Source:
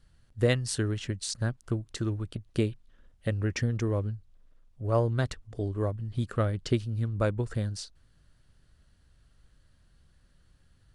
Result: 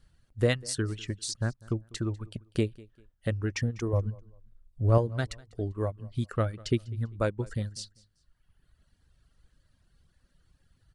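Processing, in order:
reverb reduction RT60 1.3 s
0:03.93–0:04.98: low-shelf EQ 280 Hz +9 dB
repeating echo 197 ms, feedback 29%, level −23 dB

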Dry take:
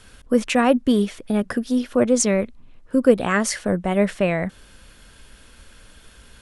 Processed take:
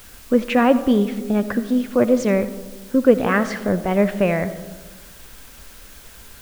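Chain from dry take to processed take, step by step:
low-pass filter 2,900 Hz 12 dB per octave
in parallel at −8 dB: bit-depth reduction 6 bits, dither triangular
on the sum: convolution reverb RT60 1.3 s, pre-delay 35 ms, DRR 12.5 dB
level −1.5 dB

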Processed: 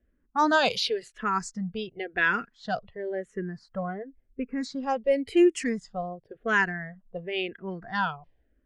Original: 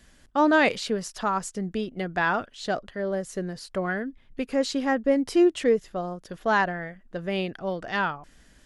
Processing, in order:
high-shelf EQ 2,200 Hz +9.5 dB, from 0:03.83 −3 dB, from 0:04.83 +7.5 dB
noise reduction from a noise print of the clip's start 10 dB
low-pass that shuts in the quiet parts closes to 690 Hz, open at −17.5 dBFS
frequency shifter mixed with the dry sound −0.94 Hz

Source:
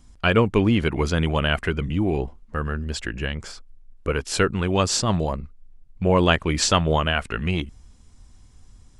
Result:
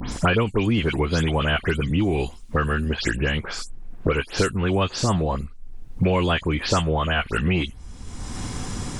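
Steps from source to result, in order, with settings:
every frequency bin delayed by itself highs late, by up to 115 ms
multiband upward and downward compressor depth 100%

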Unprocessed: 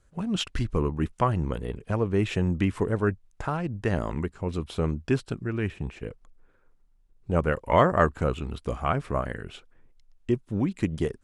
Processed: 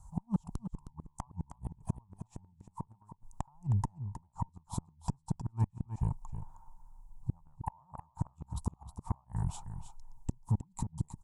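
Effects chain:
drawn EQ curve 160 Hz 0 dB, 280 Hz −18 dB, 490 Hz −30 dB, 910 Hz +13 dB, 1,500 Hz −27 dB, 2,800 Hz −28 dB, 7,400 Hz −1 dB, 11,000 Hz −3 dB
downward compressor 4 to 1, threshold −34 dBFS, peak gain reduction 18 dB
gate with flip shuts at −29 dBFS, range −39 dB
harmonic generator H 5 −23 dB, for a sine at −24.5 dBFS
single-tap delay 314 ms −10.5 dB
level +8.5 dB

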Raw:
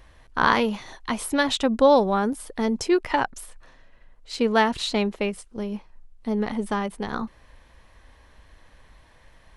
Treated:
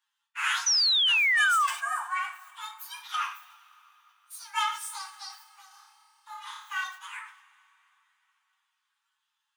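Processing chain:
partials spread apart or drawn together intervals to 129%
noise gate −47 dBFS, range −14 dB
Butterworth high-pass 850 Hz 96 dB per octave
coupled-rooms reverb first 0.41 s, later 3.5 s, from −19 dB, DRR 5.5 dB
flanger 0.6 Hz, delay 9.6 ms, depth 7.3 ms, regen −48%
0:00.66–0:01.67: sound drawn into the spectrogram fall 1,100–6,100 Hz −23 dBFS
0:05.68–0:06.84: flutter between parallel walls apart 5 metres, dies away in 0.53 s
level that may fall only so fast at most 120 dB per second

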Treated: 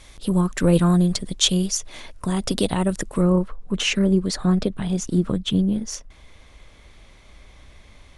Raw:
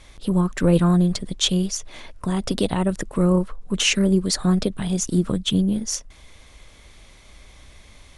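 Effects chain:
high-shelf EQ 4,700 Hz +5.5 dB, from 0:03.21 −9 dB

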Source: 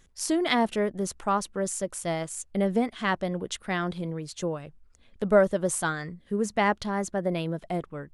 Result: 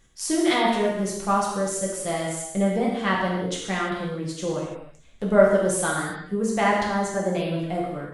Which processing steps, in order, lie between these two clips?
reverb whose tail is shaped and stops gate 360 ms falling, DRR −4 dB
level −1.5 dB

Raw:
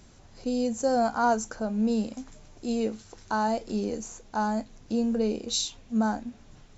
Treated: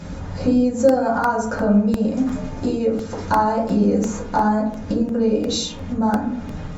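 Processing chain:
low-pass filter 3,400 Hz 6 dB per octave
in parallel at +1 dB: brickwall limiter −22.5 dBFS, peak gain reduction 8 dB
on the sum: downward compressor 6 to 1, threshold −32 dBFS, peak gain reduction 15 dB
convolution reverb RT60 0.65 s, pre-delay 3 ms, DRR −7 dB
regular buffer underruns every 0.35 s, samples 64, repeat, from 0:00.89
level +7 dB

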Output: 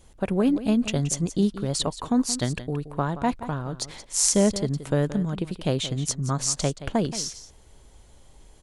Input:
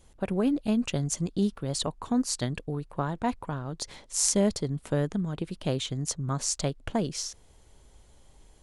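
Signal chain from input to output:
single-tap delay 175 ms −14 dB
level +4 dB

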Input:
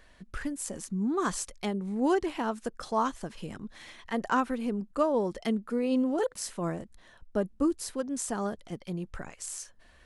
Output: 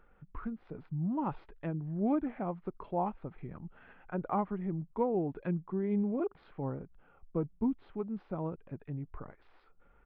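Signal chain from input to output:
pitch shifter −4 semitones
Gaussian smoothing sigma 4.3 samples
level −4 dB

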